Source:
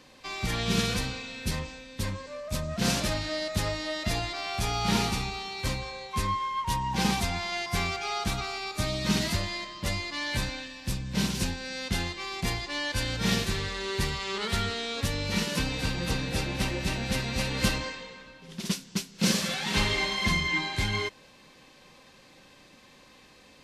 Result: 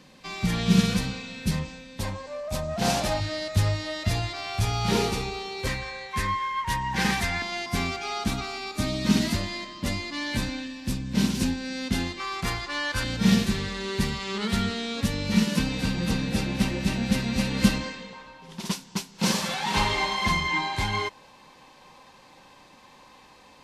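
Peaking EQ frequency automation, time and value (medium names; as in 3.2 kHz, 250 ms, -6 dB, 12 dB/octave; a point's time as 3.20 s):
peaking EQ +12 dB 0.57 oct
180 Hz
from 1.99 s 760 Hz
from 3.20 s 100 Hz
from 4.90 s 440 Hz
from 5.67 s 1.8 kHz
from 7.42 s 250 Hz
from 12.20 s 1.3 kHz
from 13.04 s 210 Hz
from 18.13 s 910 Hz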